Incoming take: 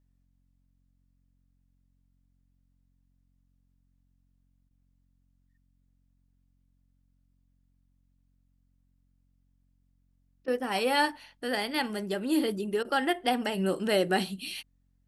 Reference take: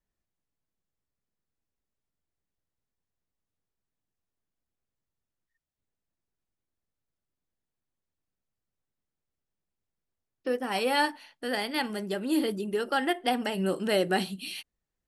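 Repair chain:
hum removal 45.2 Hz, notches 6
repair the gap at 0:04.69/0:10.46/0:12.83, 17 ms

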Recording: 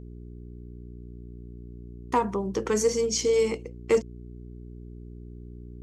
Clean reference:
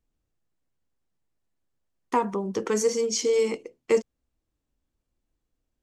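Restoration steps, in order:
clipped peaks rebuilt −13.5 dBFS
hum removal 59.8 Hz, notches 7

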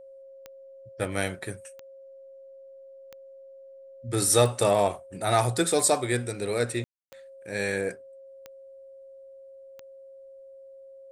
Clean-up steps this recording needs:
click removal
notch filter 540 Hz, Q 30
ambience match 0:06.84–0:07.12

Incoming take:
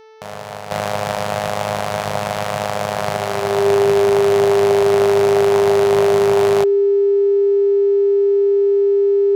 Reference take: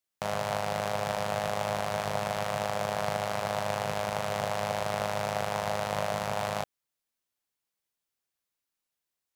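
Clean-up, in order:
hum removal 439.1 Hz, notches 14
notch filter 400 Hz, Q 30
level correction −9.5 dB, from 0:00.71

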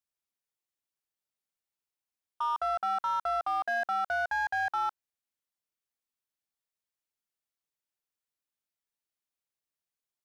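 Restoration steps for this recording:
clipped peaks rebuilt −25 dBFS

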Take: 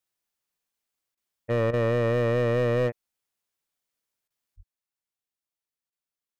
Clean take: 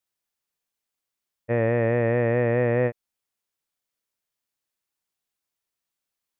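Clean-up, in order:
clipped peaks rebuilt −19.5 dBFS
high-pass at the plosives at 0:04.56
repair the gap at 0:01.15/0:01.71/0:04.28/0:05.90, 22 ms
level correction +8 dB, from 0:04.56

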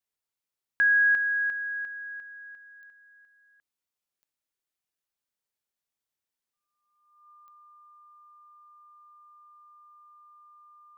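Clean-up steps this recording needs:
click removal
notch filter 1,200 Hz, Q 30

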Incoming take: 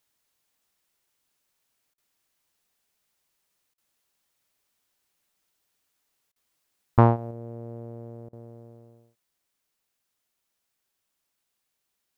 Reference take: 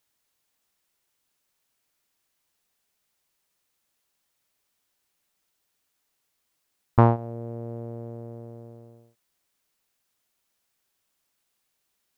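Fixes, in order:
repair the gap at 0:01.94/0:03.74/0:06.32/0:08.29, 38 ms
level 0 dB, from 0:07.31 +3.5 dB

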